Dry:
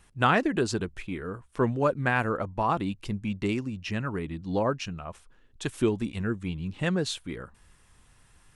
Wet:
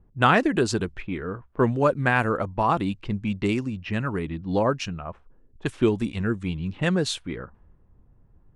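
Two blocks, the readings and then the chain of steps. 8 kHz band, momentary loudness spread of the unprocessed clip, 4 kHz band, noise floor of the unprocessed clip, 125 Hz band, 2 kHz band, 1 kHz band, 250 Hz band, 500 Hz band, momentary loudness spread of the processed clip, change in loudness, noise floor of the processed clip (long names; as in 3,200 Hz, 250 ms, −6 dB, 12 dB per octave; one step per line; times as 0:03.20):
+3.0 dB, 12 LU, +3.5 dB, −61 dBFS, +4.0 dB, +4.0 dB, +4.0 dB, +4.0 dB, +4.0 dB, 13 LU, +4.0 dB, −58 dBFS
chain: low-pass that shuts in the quiet parts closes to 410 Hz, open at −26 dBFS
level +4 dB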